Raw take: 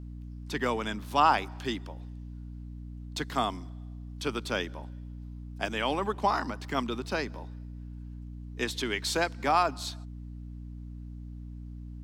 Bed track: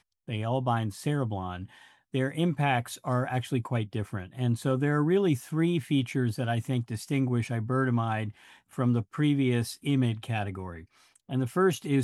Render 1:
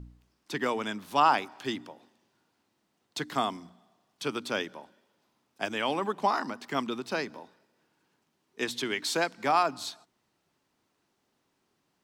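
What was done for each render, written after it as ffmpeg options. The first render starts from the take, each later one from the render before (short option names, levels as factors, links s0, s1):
-af "bandreject=f=60:t=h:w=4,bandreject=f=120:t=h:w=4,bandreject=f=180:t=h:w=4,bandreject=f=240:t=h:w=4,bandreject=f=300:t=h:w=4"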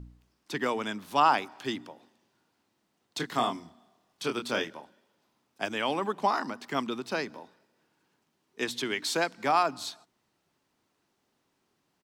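-filter_complex "[0:a]asplit=3[s0][s1][s2];[s0]afade=t=out:st=3.19:d=0.02[s3];[s1]asplit=2[s4][s5];[s5]adelay=25,volume=0.562[s6];[s4][s6]amix=inputs=2:normalize=0,afade=t=in:st=3.19:d=0.02,afade=t=out:st=4.8:d=0.02[s7];[s2]afade=t=in:st=4.8:d=0.02[s8];[s3][s7][s8]amix=inputs=3:normalize=0"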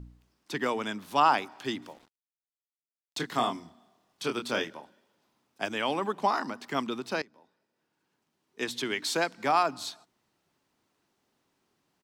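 -filter_complex "[0:a]asettb=1/sr,asplit=3[s0][s1][s2];[s0]atrim=end=1.824[s3];[s1]atrim=start=1.82:end=3.18,asetpts=PTS-STARTPTS,afade=t=in:d=0.004:c=qsin,afade=t=out:st=1.356:d=0.004:c=qsin,acrusher=bits=8:mix=0:aa=0.5[s4];[s2]atrim=start=3.176[s5];[s3][s4]acrossfade=d=0.004:c1=hsin:c2=qsin[s6];[s6][s5]acrossfade=d=0.004:c1=qsin:c2=hsin,asplit=2[s7][s8];[s7]atrim=end=7.22,asetpts=PTS-STARTPTS,afade=t=out:st=7.216:d=0.004:c=hsin:silence=0.0891251[s9];[s8]atrim=start=7.22,asetpts=PTS-STARTPTS,afade=t=in:d=1.64:silence=0.0891251[s10];[s9][s10]concat=n=2:v=0:a=1"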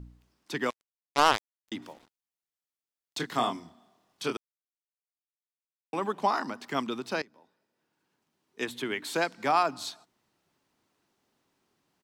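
-filter_complex "[0:a]asettb=1/sr,asplit=3[s0][s1][s2];[s0]atrim=end=0.704[s3];[s1]atrim=start=0.7:end=1.72,asetpts=PTS-STARTPTS,afade=t=in:d=0.004:c=qsin,afade=t=out:st=1.016:d=0.004:c=qsin,acrusher=bits=2:mix=0:aa=0.5[s4];[s2]atrim=start=1.716[s5];[s3][s4]acrossfade=d=0.004:c1=hsin:c2=qsin[s6];[s6][s5]acrossfade=d=0.004:c1=qsin:c2=hsin,asettb=1/sr,asplit=3[s7][s8][s9];[s7]atrim=end=8.654[s10];[s8]atrim=start=8.65:end=9.14,asetpts=PTS-STARTPTS,afade=t=in:d=0.004:c=qsin,afade=t=out:st=0.486:d=0.004:c=qsin,equalizer=f=5400:w=1.2:g=-11[s11];[s9]atrim=start=9.136[s12];[s10][s11]acrossfade=d=0.004:c1=hsin:c2=qsin[s13];[s13][s12]acrossfade=d=0.004:c1=qsin:c2=hsin,asplit=3[s14][s15][s16];[s14]atrim=end=4.37,asetpts=PTS-STARTPTS,afade=t=out:st=4.366:d=0.004:c=hsin[s17];[s15]atrim=start=4.37:end=5.93,asetpts=PTS-STARTPTS,volume=0[s18];[s16]atrim=start=5.93,asetpts=PTS-STARTPTS,afade=t=in:d=0.004:c=hsin[s19];[s17][s18][s19]concat=n=3:v=0:a=1"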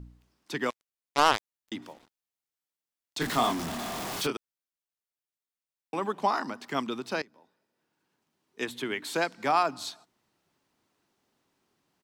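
-filter_complex "[0:a]asettb=1/sr,asplit=3[s0][s1][s2];[s0]atrim=end=3.214[s3];[s1]atrim=start=3.21:end=4.27,asetpts=PTS-STARTPTS,afade=t=in:d=0.004:c=qsin,afade=t=out:st=1.056:d=0.004:c=qsin,aeval=exprs='val(0)+0.5*0.0355*sgn(val(0))':c=same[s4];[s2]atrim=start=4.266[s5];[s3][s4]acrossfade=d=0.004:c1=hsin:c2=qsin[s6];[s6][s5]acrossfade=d=0.004:c1=qsin:c2=hsin"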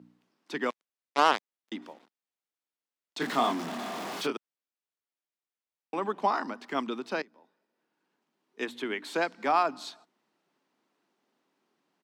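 -af "highpass=f=190:w=0.5412,highpass=f=190:w=1.3066,highshelf=f=6000:g=-12"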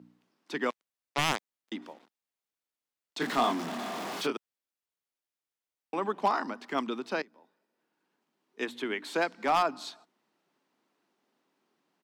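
-af "aeval=exprs='0.15*(abs(mod(val(0)/0.15+3,4)-2)-1)':c=same"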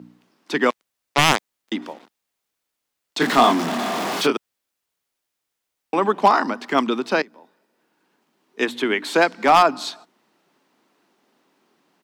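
-af "volume=3.98"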